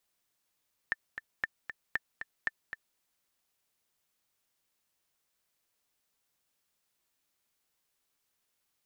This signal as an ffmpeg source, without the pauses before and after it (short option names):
-f lavfi -i "aevalsrc='pow(10,(-16.5-9*gte(mod(t,2*60/232),60/232))/20)*sin(2*PI*1780*mod(t,60/232))*exp(-6.91*mod(t,60/232)/0.03)':d=2.06:s=44100"